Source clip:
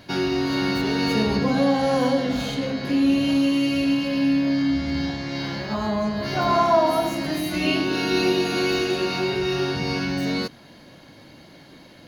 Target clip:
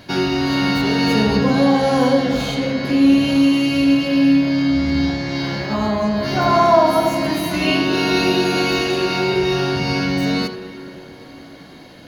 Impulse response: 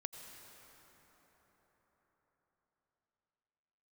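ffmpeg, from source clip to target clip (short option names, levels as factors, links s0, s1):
-filter_complex "[0:a]asplit=2[s0][s1];[1:a]atrim=start_sample=2205,lowpass=4000,adelay=80[s2];[s1][s2]afir=irnorm=-1:irlink=0,volume=0.562[s3];[s0][s3]amix=inputs=2:normalize=0,volume=1.68"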